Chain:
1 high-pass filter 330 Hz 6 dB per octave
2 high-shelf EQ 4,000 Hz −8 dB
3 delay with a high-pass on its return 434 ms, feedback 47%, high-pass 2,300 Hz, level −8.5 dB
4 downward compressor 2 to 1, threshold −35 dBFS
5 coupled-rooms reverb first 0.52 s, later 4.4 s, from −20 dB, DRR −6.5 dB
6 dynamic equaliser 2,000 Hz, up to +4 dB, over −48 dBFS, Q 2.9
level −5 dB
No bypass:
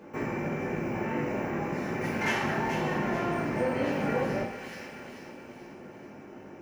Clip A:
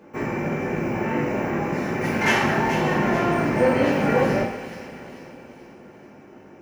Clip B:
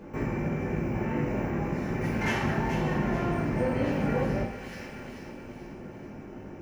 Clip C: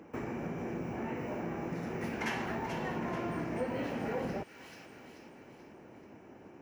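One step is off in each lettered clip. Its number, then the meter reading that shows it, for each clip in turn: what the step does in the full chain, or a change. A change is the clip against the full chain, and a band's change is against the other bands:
4, average gain reduction 5.0 dB
1, 125 Hz band +7.5 dB
5, 2 kHz band −1.5 dB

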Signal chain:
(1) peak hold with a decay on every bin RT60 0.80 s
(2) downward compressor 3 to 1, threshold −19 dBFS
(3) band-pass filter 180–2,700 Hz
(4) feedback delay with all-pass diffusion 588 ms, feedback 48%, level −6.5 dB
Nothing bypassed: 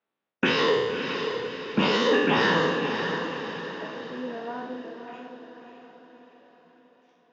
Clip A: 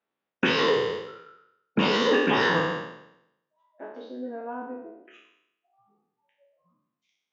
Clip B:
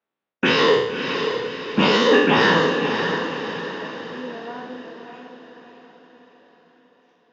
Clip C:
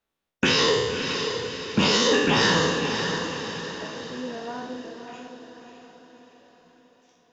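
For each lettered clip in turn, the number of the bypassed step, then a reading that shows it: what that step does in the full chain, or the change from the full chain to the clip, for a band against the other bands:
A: 4, echo-to-direct ratio −5.5 dB to none audible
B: 2, average gain reduction 2.0 dB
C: 3, 4 kHz band +5.0 dB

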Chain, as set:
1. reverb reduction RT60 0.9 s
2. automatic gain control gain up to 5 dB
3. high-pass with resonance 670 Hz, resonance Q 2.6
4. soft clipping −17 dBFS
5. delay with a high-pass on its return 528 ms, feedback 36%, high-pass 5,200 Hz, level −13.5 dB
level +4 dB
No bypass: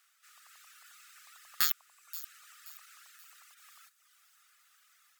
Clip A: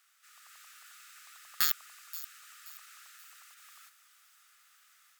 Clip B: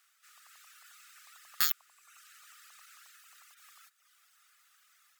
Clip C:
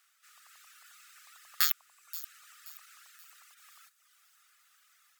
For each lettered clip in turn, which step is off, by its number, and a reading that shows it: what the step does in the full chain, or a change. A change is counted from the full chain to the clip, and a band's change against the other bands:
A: 1, change in momentary loudness spread +2 LU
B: 5, echo-to-direct ratio −30.5 dB to none audible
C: 4, change in crest factor +4.0 dB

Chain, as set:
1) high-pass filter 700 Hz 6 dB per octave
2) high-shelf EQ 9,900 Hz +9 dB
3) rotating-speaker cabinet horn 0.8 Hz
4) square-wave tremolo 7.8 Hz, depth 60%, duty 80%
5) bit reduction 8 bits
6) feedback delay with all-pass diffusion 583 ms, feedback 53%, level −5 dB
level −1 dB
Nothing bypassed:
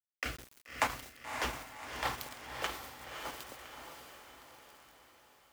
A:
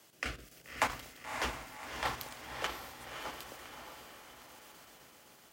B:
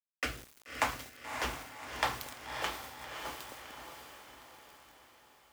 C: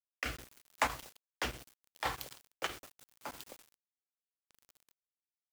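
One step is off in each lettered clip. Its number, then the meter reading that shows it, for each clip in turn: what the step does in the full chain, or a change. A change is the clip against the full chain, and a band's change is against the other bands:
5, distortion level −14 dB
4, change in integrated loudness +1.5 LU
6, echo-to-direct ratio −3.5 dB to none audible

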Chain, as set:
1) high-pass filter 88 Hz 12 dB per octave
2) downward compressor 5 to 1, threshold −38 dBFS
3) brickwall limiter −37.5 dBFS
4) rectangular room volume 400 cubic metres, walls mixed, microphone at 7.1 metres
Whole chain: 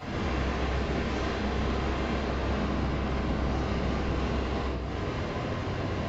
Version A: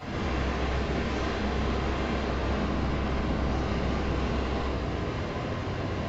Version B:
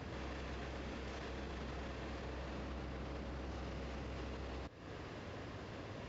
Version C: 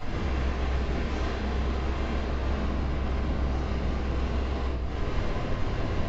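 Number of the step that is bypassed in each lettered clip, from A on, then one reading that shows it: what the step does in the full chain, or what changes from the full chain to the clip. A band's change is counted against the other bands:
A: 2, average gain reduction 11.0 dB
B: 4, echo-to-direct ratio 12.5 dB to none audible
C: 1, 125 Hz band +4.0 dB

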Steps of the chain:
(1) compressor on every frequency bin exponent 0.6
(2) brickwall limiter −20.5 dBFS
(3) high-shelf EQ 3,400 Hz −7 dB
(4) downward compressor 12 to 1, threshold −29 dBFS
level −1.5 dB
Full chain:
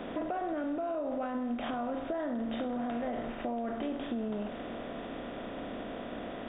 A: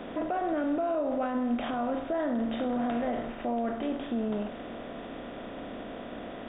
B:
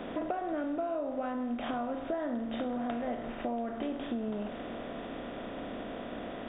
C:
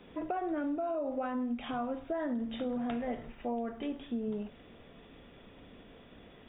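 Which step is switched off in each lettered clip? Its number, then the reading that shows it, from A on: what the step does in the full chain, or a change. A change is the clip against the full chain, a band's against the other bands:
4, average gain reduction 2.5 dB
2, average gain reduction 2.0 dB
1, change in momentary loudness spread +14 LU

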